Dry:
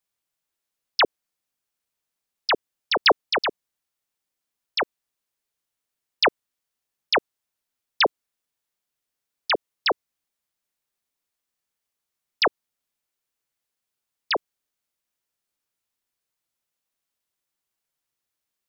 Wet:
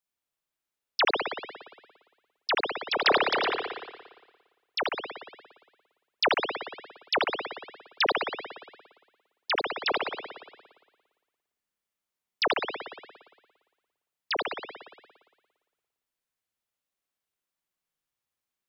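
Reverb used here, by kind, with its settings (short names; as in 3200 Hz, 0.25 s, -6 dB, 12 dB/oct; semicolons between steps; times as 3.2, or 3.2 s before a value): spring tank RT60 1.4 s, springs 57 ms, chirp 50 ms, DRR -1 dB; gain -6 dB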